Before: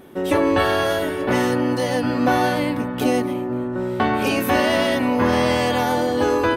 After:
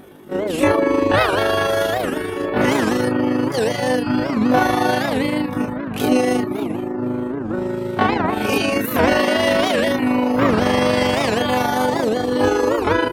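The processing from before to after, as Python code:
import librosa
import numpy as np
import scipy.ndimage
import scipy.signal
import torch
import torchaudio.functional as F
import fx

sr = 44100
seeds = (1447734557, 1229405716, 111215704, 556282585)

y = fx.stretch_grains(x, sr, factor=2.0, grain_ms=79.0)
y = fx.dereverb_blind(y, sr, rt60_s=0.52)
y = fx.record_warp(y, sr, rpm=78.0, depth_cents=250.0)
y = y * 10.0 ** (4.0 / 20.0)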